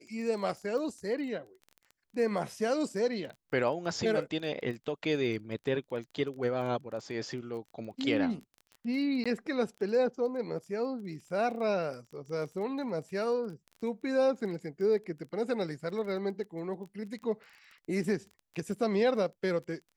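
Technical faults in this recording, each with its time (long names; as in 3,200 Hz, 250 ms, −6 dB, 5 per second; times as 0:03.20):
surface crackle 18 per second −41 dBFS
0:09.24–0:09.26: drop-out 16 ms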